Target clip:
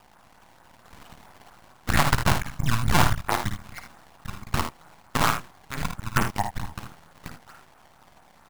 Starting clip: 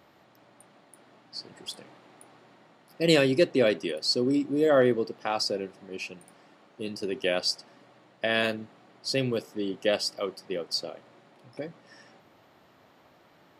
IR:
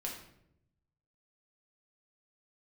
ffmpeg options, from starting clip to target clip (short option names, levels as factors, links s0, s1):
-filter_complex "[0:a]highpass=f=150:t=q:w=0.5412,highpass=f=150:t=q:w=1.307,lowpass=f=2200:t=q:w=0.5176,lowpass=f=2200:t=q:w=0.7071,lowpass=f=2200:t=q:w=1.932,afreqshift=-400,asplit=2[s0][s1];[s1]acompressor=threshold=0.0112:ratio=10,volume=0.794[s2];[s0][s2]amix=inputs=2:normalize=0,acrusher=samples=20:mix=1:aa=0.000001:lfo=1:lforange=32:lforate=2.8,atempo=1.6,aeval=exprs='max(val(0),0)':c=same,aeval=exprs='0.251*(cos(1*acos(clip(val(0)/0.251,-1,1)))-cos(1*PI/2))+0.1*(cos(6*acos(clip(val(0)/0.251,-1,1)))-cos(6*PI/2))+0.0398*(cos(8*acos(clip(val(0)/0.251,-1,1)))-cos(8*PI/2))':c=same,lowshelf=f=590:t=q:w=1.5:g=-9,aecho=1:1:54|79:0.422|0.299,volume=2.24"